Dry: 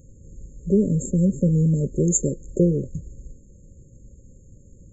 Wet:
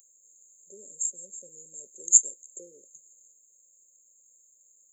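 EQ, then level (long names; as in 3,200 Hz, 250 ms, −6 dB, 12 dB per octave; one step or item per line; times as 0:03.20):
high-pass filter 440 Hz 12 dB per octave
first difference
high-shelf EQ 5,600 Hz +11 dB
−1.0 dB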